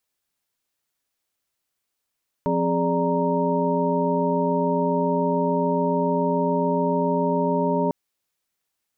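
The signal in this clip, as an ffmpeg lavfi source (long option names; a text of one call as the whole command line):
ffmpeg -f lavfi -i "aevalsrc='0.0531*(sin(2*PI*174.61*t)+sin(2*PI*261.63*t)+sin(2*PI*415.3*t)+sin(2*PI*587.33*t)+sin(2*PI*932.33*t))':duration=5.45:sample_rate=44100" out.wav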